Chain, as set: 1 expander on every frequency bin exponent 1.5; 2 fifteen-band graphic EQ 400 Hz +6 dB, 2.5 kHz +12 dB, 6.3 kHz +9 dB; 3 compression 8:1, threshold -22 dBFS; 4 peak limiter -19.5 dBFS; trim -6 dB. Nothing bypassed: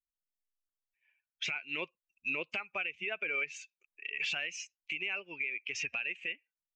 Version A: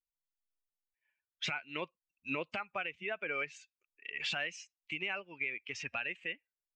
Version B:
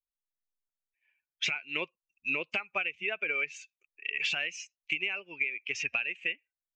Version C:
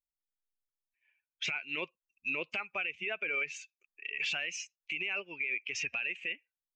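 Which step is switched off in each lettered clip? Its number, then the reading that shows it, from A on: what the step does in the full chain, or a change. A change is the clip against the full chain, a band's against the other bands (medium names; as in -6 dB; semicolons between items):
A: 2, 8 kHz band -8.0 dB; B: 4, mean gain reduction 2.0 dB; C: 3, mean gain reduction 5.0 dB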